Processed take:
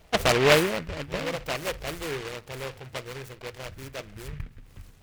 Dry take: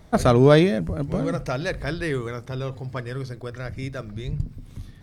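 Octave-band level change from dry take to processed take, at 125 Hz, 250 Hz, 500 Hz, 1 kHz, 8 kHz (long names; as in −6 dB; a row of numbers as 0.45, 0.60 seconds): −11.0, −10.0, −5.0, −2.0, +6.0 decibels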